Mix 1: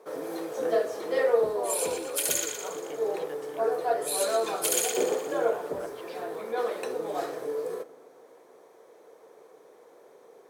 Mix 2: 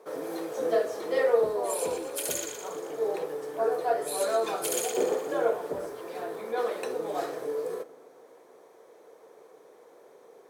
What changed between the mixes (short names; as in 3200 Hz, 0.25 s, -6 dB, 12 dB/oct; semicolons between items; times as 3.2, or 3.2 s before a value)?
speech -6.5 dB; second sound -5.0 dB